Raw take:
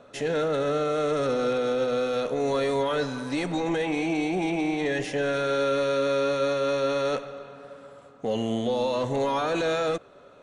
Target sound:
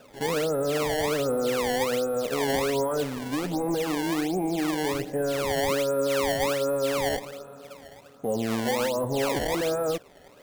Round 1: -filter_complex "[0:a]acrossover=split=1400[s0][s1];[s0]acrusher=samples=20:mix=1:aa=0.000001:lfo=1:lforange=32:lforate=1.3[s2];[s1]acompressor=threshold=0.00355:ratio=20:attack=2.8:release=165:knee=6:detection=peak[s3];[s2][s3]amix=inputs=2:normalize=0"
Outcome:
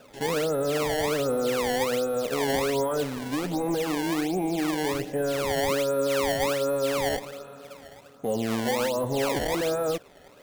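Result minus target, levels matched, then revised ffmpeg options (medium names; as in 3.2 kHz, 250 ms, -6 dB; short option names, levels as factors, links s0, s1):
compression: peak gain reduction -10.5 dB
-filter_complex "[0:a]acrossover=split=1400[s0][s1];[s0]acrusher=samples=20:mix=1:aa=0.000001:lfo=1:lforange=32:lforate=1.3[s2];[s1]acompressor=threshold=0.001:ratio=20:attack=2.8:release=165:knee=6:detection=peak[s3];[s2][s3]amix=inputs=2:normalize=0"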